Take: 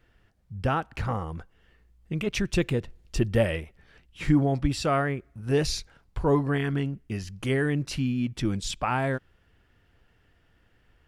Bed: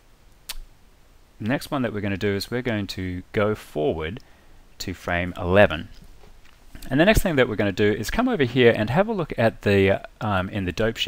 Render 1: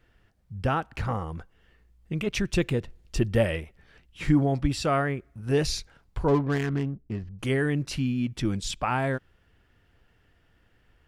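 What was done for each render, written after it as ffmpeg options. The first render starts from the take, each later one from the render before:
-filter_complex "[0:a]asettb=1/sr,asplit=3[a][b][c];[a]atrim=end=6.284[d];[b]atrim=start=6.28:end=7.39,asetpts=PTS-STARTPTS,afade=t=in:d=0.004:c=qsin,afade=t=out:st=1.106:d=0.004:c=qsin,adynamicsmooth=sensitivity=4.5:basefreq=610[e];[c]atrim=start=7.386[f];[d][e]acrossfade=d=0.004:c1=hsin:c2=qsin[g];[g][f]acrossfade=d=0.004:c1=qsin:c2=hsin"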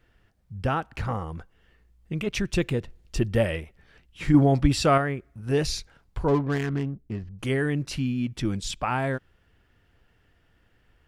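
-filter_complex "[0:a]asettb=1/sr,asplit=3[a][b][c];[a]atrim=end=4.344[d];[b]atrim=start=4.34:end=4.98,asetpts=PTS-STARTPTS,afade=t=in:d=0.004:c=qsin,afade=t=out:st=0.636:d=0.004:c=qsin,acontrast=28[e];[c]atrim=start=4.976[f];[d][e]acrossfade=d=0.004:c1=hsin:c2=qsin[g];[g][f]acrossfade=d=0.004:c1=qsin:c2=hsin"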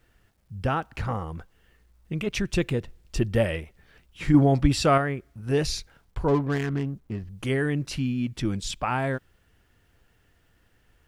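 -af "acrusher=bits=11:mix=0:aa=0.000001"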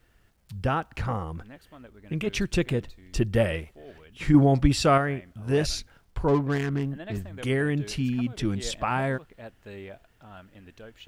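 -filter_complex "[1:a]volume=-23.5dB[a];[0:a][a]amix=inputs=2:normalize=0"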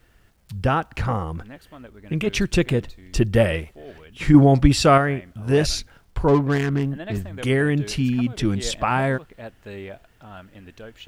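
-af "volume=5.5dB"

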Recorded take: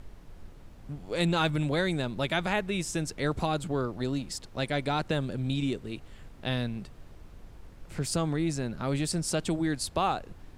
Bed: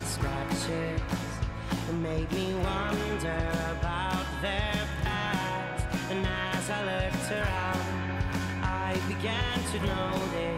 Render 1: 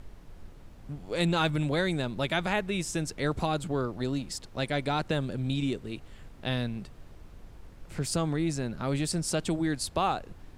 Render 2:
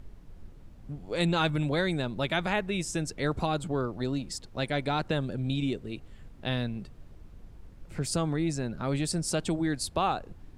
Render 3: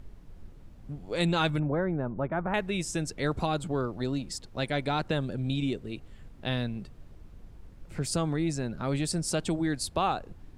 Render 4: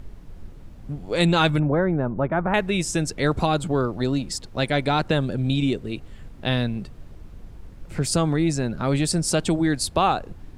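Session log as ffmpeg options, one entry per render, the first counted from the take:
-af anull
-af "afftdn=nr=6:nf=-50"
-filter_complex "[0:a]asettb=1/sr,asplit=3[a][b][c];[a]atrim=end=1.594[d];[b]atrim=start=1.59:end=2.54,asetpts=PTS-STARTPTS,afade=t=in:d=0.004:c=qsin,afade=t=out:st=0.946:d=0.004:c=qsin,lowpass=f=1.4k:w=0.5412,lowpass=f=1.4k:w=1.3066[e];[c]atrim=start=2.536[f];[d][e]acrossfade=d=0.004:c1=hsin:c2=qsin[g];[g][f]acrossfade=d=0.004:c1=qsin:c2=hsin"
-af "volume=7.5dB"

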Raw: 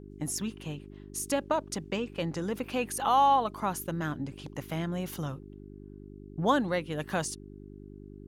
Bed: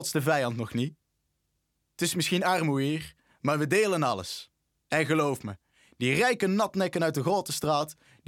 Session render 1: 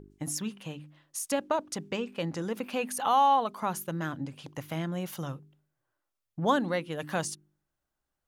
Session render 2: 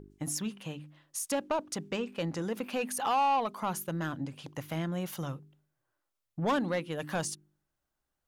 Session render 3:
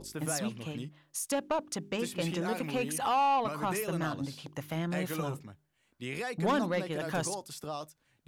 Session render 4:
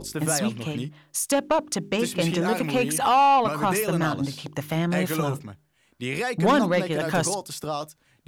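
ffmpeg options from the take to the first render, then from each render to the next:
-af "bandreject=f=50:t=h:w=4,bandreject=f=100:t=h:w=4,bandreject=f=150:t=h:w=4,bandreject=f=200:t=h:w=4,bandreject=f=250:t=h:w=4,bandreject=f=300:t=h:w=4,bandreject=f=350:t=h:w=4,bandreject=f=400:t=h:w=4"
-af "asoftclip=type=tanh:threshold=-22.5dB"
-filter_complex "[1:a]volume=-12.5dB[a];[0:a][a]amix=inputs=2:normalize=0"
-af "volume=9dB"

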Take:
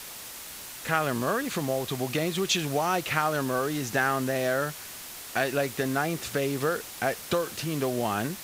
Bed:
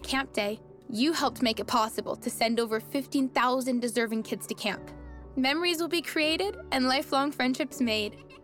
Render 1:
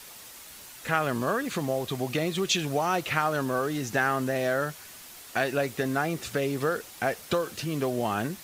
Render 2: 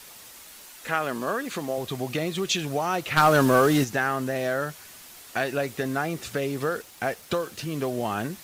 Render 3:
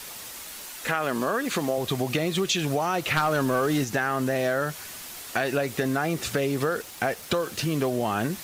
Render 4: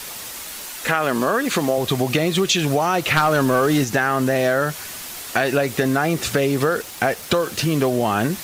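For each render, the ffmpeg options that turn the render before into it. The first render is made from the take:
-af "afftdn=nr=6:nf=-42"
-filter_complex "[0:a]asettb=1/sr,asplit=3[a][b][c];[a]atrim=end=0.494[d];[b]atrim=start=0.49:end=1.78,asetpts=PTS-STARTPTS,afade=t=in:d=0.004:c=qsin,afade=t=out:st=1.286:d=0.004:c=qsin,equalizer=f=100:w=1.5:g=-15[e];[c]atrim=start=1.776[f];[d][e]acrossfade=d=0.004:c1=hsin:c2=qsin[g];[g][f]acrossfade=d=0.004:c1=qsin:c2=hsin,asplit=3[h][i][j];[h]afade=t=out:st=3.16:d=0.02[k];[i]aeval=exprs='0.335*sin(PI/2*2*val(0)/0.335)':c=same,afade=t=in:st=3.16:d=0.02,afade=t=out:st=3.83:d=0.02[l];[j]afade=t=in:st=3.83:d=0.02[m];[k][l][m]amix=inputs=3:normalize=0,asettb=1/sr,asplit=3[n][o][p];[n]atrim=end=6.824[q];[o]atrim=start=6.82:end=7.78,asetpts=PTS-STARTPTS,afade=t=in:d=0.004:c=qsin,afade=t=out:st=0.956:d=0.004:c=qsin,aeval=exprs='sgn(val(0))*max(abs(val(0))-0.00168,0)':c=same[r];[p]atrim=start=7.776[s];[q][r]acrossfade=d=0.004:c1=hsin:c2=qsin[t];[t][s]acrossfade=d=0.004:c1=qsin:c2=hsin"
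-filter_complex "[0:a]asplit=2[a][b];[b]alimiter=limit=-19dB:level=0:latency=1:release=28,volume=1dB[c];[a][c]amix=inputs=2:normalize=0,acompressor=threshold=-22dB:ratio=4"
-af "volume=6.5dB"

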